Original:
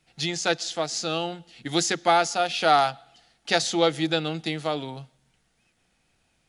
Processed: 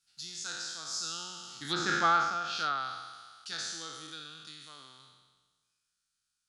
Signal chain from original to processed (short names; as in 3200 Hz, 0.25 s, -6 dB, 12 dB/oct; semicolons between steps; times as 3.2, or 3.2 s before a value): spectral trails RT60 1.40 s; Doppler pass-by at 2, 9 m/s, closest 1.8 m; treble ducked by the level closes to 1900 Hz, closed at -21.5 dBFS; EQ curve 130 Hz 0 dB, 390 Hz -6 dB, 660 Hz -14 dB, 1400 Hz +9 dB, 2100 Hz -6 dB, 4600 Hz +11 dB; mismatched tape noise reduction encoder only; gain -5 dB